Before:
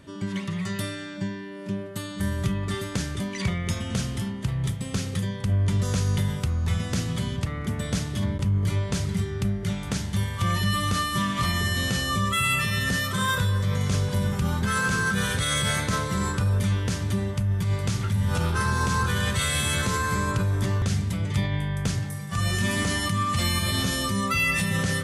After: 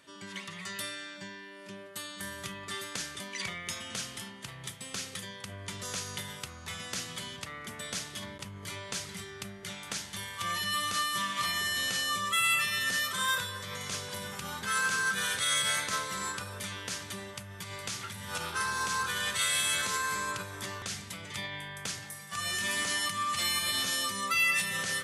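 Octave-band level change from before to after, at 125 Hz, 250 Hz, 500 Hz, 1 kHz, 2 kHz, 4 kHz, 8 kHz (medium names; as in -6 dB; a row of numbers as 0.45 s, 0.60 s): -22.5 dB, -17.5 dB, -10.5 dB, -5.0 dB, -3.0 dB, -1.5 dB, -1.0 dB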